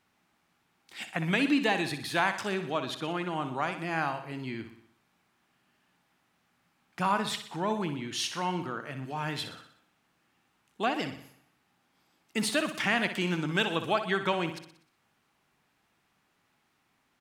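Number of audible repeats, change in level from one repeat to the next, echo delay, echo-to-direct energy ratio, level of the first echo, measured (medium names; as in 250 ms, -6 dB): 5, -5.5 dB, 61 ms, -8.5 dB, -10.0 dB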